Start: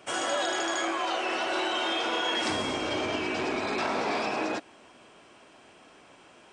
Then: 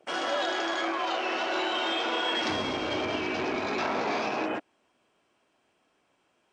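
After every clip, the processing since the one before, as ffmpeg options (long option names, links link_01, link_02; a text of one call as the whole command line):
ffmpeg -i in.wav -af "afwtdn=0.01" out.wav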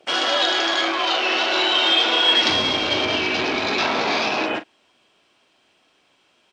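ffmpeg -i in.wav -filter_complex "[0:a]equalizer=frequency=3800:width_type=o:width=1.4:gain=10.5,asplit=2[link_01][link_02];[link_02]adelay=40,volume=-12dB[link_03];[link_01][link_03]amix=inputs=2:normalize=0,volume=5.5dB" out.wav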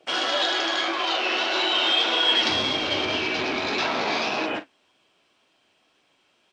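ffmpeg -i in.wav -af "flanger=delay=6.1:depth=7.6:regen=-46:speed=1.8:shape=sinusoidal" out.wav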